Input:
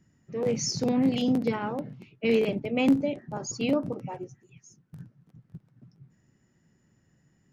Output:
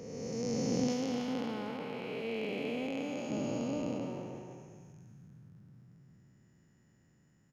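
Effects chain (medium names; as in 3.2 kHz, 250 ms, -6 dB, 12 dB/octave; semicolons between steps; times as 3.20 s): spectral blur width 752 ms; 0.87–3.30 s: bass shelf 390 Hz -11.5 dB; speakerphone echo 310 ms, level -9 dB; decay stretcher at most 44 dB/s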